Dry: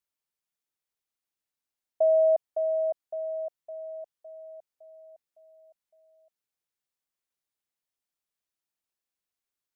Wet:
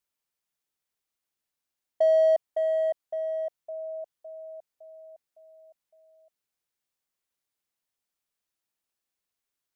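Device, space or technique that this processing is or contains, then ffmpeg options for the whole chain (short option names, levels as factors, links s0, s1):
parallel distortion: -filter_complex "[0:a]asplit=2[s0][s1];[s1]asoftclip=type=hard:threshold=0.0266,volume=0.376[s2];[s0][s2]amix=inputs=2:normalize=0"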